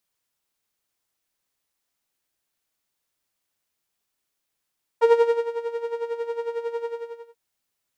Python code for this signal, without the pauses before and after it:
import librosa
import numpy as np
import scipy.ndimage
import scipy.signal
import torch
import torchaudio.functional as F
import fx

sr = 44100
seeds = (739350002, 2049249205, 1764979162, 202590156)

y = fx.sub_patch_tremolo(sr, seeds[0], note=82, wave='saw', wave2='saw', interval_st=0, detune_cents=16, level2_db=-9.0, sub_db=0.0, noise_db=-30.0, kind='bandpass', cutoff_hz=160.0, q=1.3, env_oct=2.5, env_decay_s=0.08, env_sustain_pct=10, attack_ms=85.0, decay_s=0.38, sustain_db=-13.0, release_s=0.53, note_s=1.81, lfo_hz=11.0, tremolo_db=12.0)